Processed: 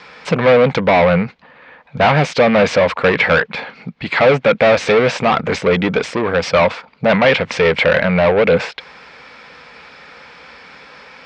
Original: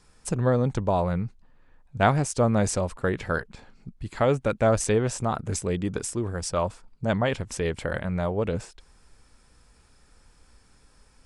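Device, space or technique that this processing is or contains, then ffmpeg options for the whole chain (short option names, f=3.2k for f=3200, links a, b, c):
overdrive pedal into a guitar cabinet: -filter_complex "[0:a]asplit=2[a][b];[b]highpass=f=720:p=1,volume=31dB,asoftclip=type=tanh:threshold=-6dB[c];[a][c]amix=inputs=2:normalize=0,lowpass=f=6.4k:p=1,volume=-6dB,highpass=84,equalizer=f=110:t=q:w=4:g=-10,equalizer=f=160:t=q:w=4:g=4,equalizer=f=350:t=q:w=4:g=-7,equalizer=f=500:t=q:w=4:g=5,equalizer=f=2.2k:t=q:w=4:g=7,lowpass=f=4.2k:w=0.5412,lowpass=f=4.2k:w=1.3066,volume=1dB"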